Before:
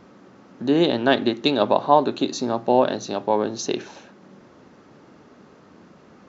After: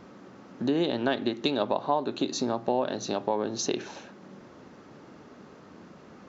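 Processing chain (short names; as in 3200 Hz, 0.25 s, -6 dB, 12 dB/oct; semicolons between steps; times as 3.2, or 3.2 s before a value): compressor 3:1, threshold -25 dBFS, peak gain reduction 12 dB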